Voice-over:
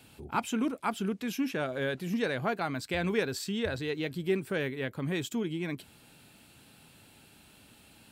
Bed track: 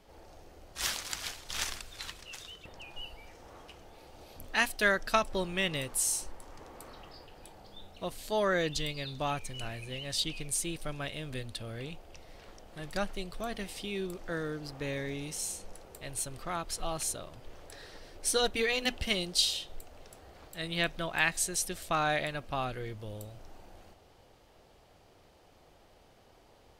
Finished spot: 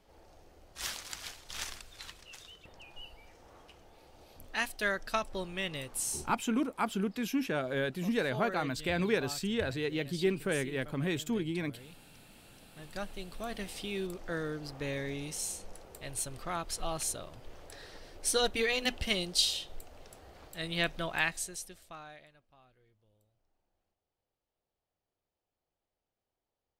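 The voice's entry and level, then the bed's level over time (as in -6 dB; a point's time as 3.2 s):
5.95 s, -0.5 dB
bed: 6.21 s -5 dB
6.43 s -12 dB
12.34 s -12 dB
13.67 s -0.5 dB
21.14 s -0.5 dB
22.5 s -29.5 dB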